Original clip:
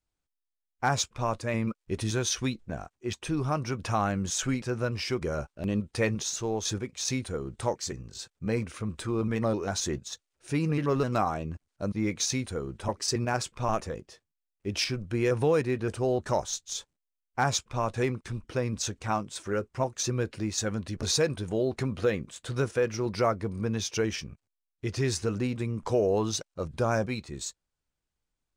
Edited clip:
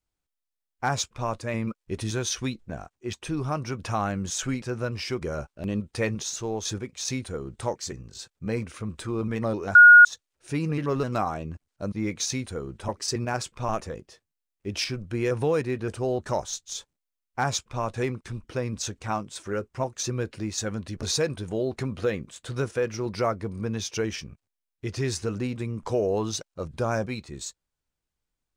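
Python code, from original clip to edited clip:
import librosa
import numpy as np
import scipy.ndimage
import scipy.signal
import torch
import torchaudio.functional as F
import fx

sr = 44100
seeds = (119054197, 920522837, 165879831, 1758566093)

y = fx.edit(x, sr, fx.bleep(start_s=9.75, length_s=0.3, hz=1440.0, db=-7.0), tone=tone)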